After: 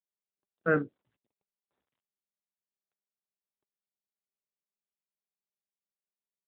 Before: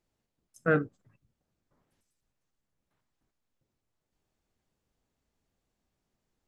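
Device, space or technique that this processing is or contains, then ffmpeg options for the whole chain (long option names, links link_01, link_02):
mobile call with aggressive noise cancelling: -af "highpass=160,afftdn=noise_reduction=23:noise_floor=-47" -ar 8000 -c:a libopencore_amrnb -b:a 12200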